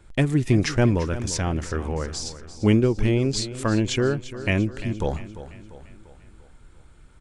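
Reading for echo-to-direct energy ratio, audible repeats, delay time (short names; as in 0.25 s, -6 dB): -12.5 dB, 4, 0.345 s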